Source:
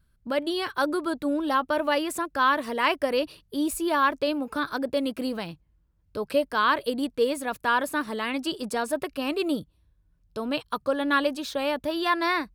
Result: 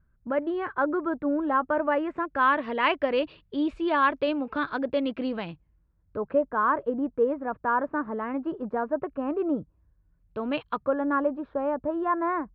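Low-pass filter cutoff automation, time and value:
low-pass filter 24 dB per octave
0:01.97 1,800 Hz
0:02.74 3,200 Hz
0:05.50 3,200 Hz
0:06.42 1,400 Hz
0:09.55 1,400 Hz
0:10.68 3,100 Hz
0:11.06 1,300 Hz

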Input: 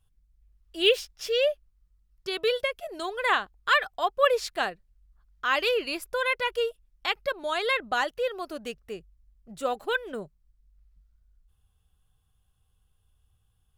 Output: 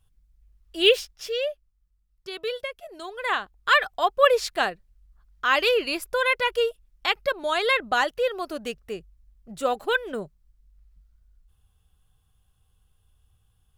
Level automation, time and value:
0:00.95 +3.5 dB
0:01.50 −4.5 dB
0:03.07 −4.5 dB
0:03.80 +4 dB

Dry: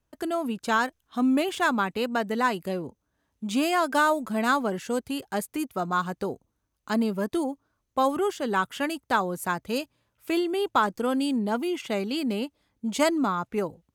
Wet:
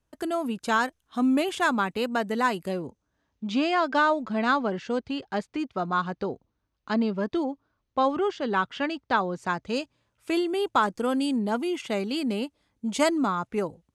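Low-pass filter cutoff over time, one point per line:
low-pass filter 24 dB per octave
0:02.63 12,000 Hz
0:03.51 5,200 Hz
0:09.22 5,200 Hz
0:10.39 11,000 Hz

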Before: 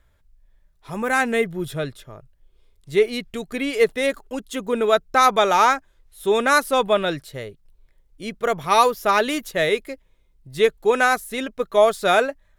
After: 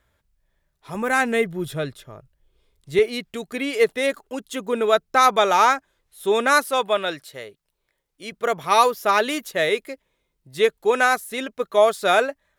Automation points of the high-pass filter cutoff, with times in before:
high-pass filter 6 dB per octave
130 Hz
from 0:00.95 51 Hz
from 0:02.99 190 Hz
from 0:06.65 560 Hz
from 0:08.32 240 Hz

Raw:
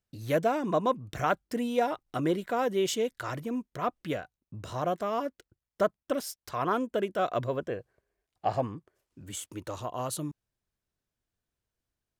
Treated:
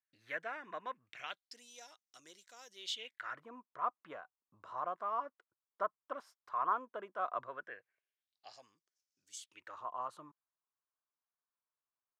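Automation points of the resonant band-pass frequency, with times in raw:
resonant band-pass, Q 3.6
0:01.01 1,800 Hz
0:01.64 6,100 Hz
0:02.69 6,100 Hz
0:03.45 1,100 Hz
0:07.38 1,100 Hz
0:08.59 5,700 Hz
0:09.34 5,700 Hz
0:09.81 1,100 Hz

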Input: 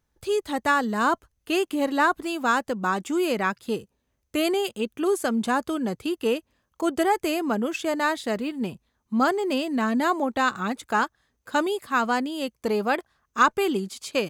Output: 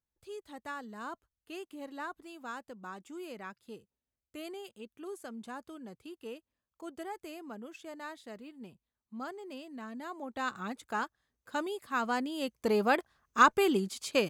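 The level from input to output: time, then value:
0:10.09 −19.5 dB
0:10.49 −11 dB
0:11.69 −11 dB
0:12.79 −3 dB

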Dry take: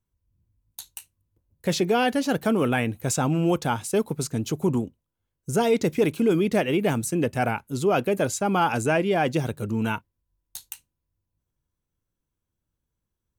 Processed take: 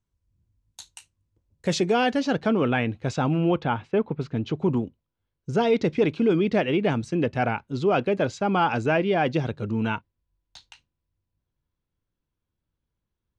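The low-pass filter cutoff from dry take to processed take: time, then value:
low-pass filter 24 dB per octave
0:01.82 8,000 Hz
0:02.55 4,600 Hz
0:03.28 4,600 Hz
0:03.91 2,600 Hz
0:04.85 4,800 Hz

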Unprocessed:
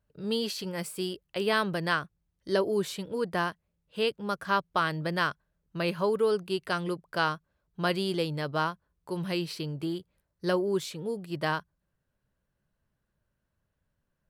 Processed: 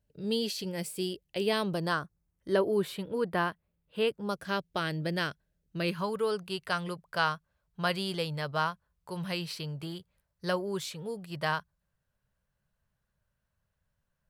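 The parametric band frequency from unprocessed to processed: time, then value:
parametric band −11 dB 0.85 octaves
0:01.44 1,200 Hz
0:02.69 6,300 Hz
0:04.00 6,300 Hz
0:04.44 1,100 Hz
0:05.77 1,100 Hz
0:06.17 310 Hz

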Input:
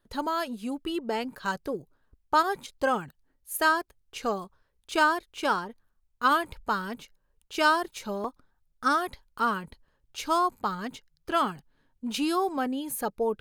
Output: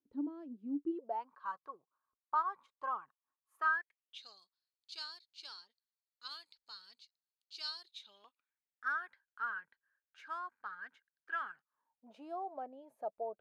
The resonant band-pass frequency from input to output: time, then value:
resonant band-pass, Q 10
0:00.85 290 Hz
0:01.25 1,100 Hz
0:03.56 1,100 Hz
0:04.28 4,400 Hz
0:07.81 4,400 Hz
0:08.92 1,600 Hz
0:11.49 1,600 Hz
0:12.11 650 Hz

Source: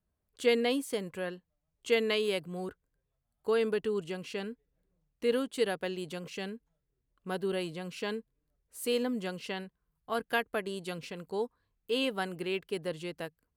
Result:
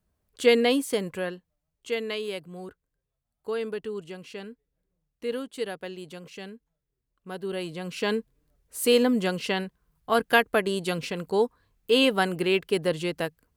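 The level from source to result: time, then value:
0:01.09 +7 dB
0:01.92 −2 dB
0:07.33 −2 dB
0:08.18 +10 dB

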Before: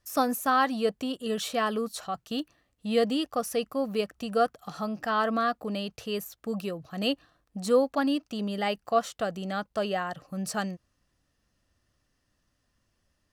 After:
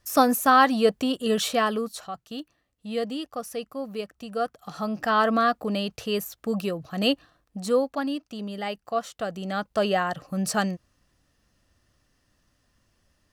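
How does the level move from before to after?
0:01.44 +6.5 dB
0:02.25 −4 dB
0:04.34 −4 dB
0:05.01 +5 dB
0:07.07 +5 dB
0:08.11 −2.5 dB
0:09.03 −2.5 dB
0:09.86 +6 dB

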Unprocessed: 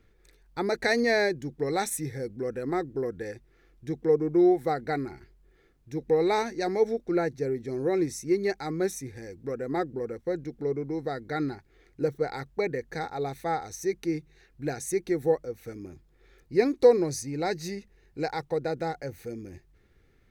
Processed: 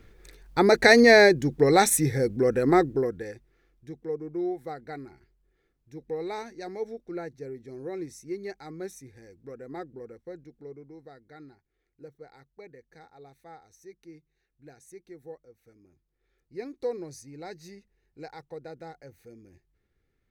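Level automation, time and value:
0:02.82 +9 dB
0:03.24 −1 dB
0:04.00 −9.5 dB
0:10.02 −9.5 dB
0:11.45 −19 dB
0:15.85 −19 dB
0:16.99 −12 dB

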